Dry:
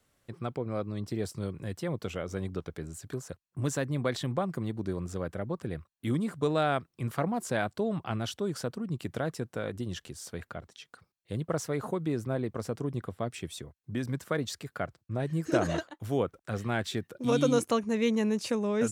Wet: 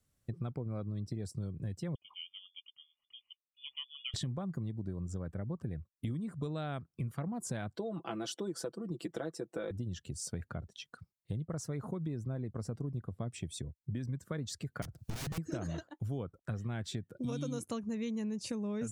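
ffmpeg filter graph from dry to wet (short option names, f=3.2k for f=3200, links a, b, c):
-filter_complex "[0:a]asettb=1/sr,asplit=3[a][b][c];[a]atrim=end=1.954[d];[b]atrim=start=1.95:end=4.14,asetpts=PTS-STARTPTS,afade=t=in:d=0.004:c=qsin,afade=t=out:st=2.186:d=0.004:c=qsin,asplit=3[e][f][g];[e]bandpass=f=730:t=q:w=8,volume=0dB[h];[f]bandpass=f=1.09k:t=q:w=8,volume=-6dB[i];[g]bandpass=f=2.44k:t=q:w=8,volume=-9dB[j];[h][i][j]amix=inputs=3:normalize=0,lowpass=f=3.1k:t=q:w=0.5098,lowpass=f=3.1k:t=q:w=0.6013,lowpass=f=3.1k:t=q:w=0.9,lowpass=f=3.1k:t=q:w=2.563,afreqshift=-3600[k];[c]atrim=start=4.136[l];[d][k]acrossfade=d=0.004:c1=hsin:c2=qsin[m];[m][l]acrossfade=d=0.004:c1=qsin:c2=hsin,asettb=1/sr,asplit=3[n][o][p];[n]atrim=end=7.764[q];[o]atrim=start=7.76:end=9.71,asetpts=PTS-STARTPTS,afade=t=in:d=0.004:c=qsin,afade=t=out:st=1.946:d=0.004:c=qsin,highpass=f=360:t=q:w=1.8,aecho=1:1:6:0.71,atrim=end_sample=85995[r];[p]atrim=start=9.706[s];[q][r]acrossfade=d=0.004:c1=hsin:c2=qsin[t];[t][s]acrossfade=d=0.004:c1=qsin:c2=hsin,asettb=1/sr,asplit=3[u][v][w];[u]atrim=end=14.824[x];[v]atrim=start=14.82:end=15.38,asetpts=PTS-STARTPTS,afade=t=in:d=0.004:c=qsin,afade=t=out:st=0.556:d=0.004:c=qsin,acompressor=mode=upward:threshold=-34dB:ratio=2.5:attack=3.2:release=140:knee=2.83:detection=peak,aeval=exprs='(mod(44.7*val(0)+1,2)-1)/44.7':c=same[y];[w]atrim=start=15.376[z];[x][y]acrossfade=d=0.004:c1=hsin:c2=qsin[aa];[aa][z]acrossfade=d=0.004:c1=qsin:c2=hsin,afftdn=nr=14:nf=-51,bass=f=250:g=12,treble=f=4k:g=8,acompressor=threshold=-36dB:ratio=6"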